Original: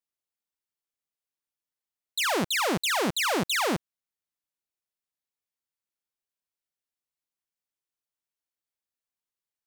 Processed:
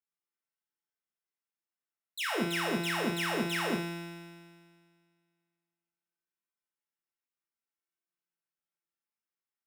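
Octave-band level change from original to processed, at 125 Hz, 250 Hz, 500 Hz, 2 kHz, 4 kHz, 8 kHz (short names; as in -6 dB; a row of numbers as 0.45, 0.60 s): -1.0, -2.0, -5.0, -4.5, -7.5, -11.0 dB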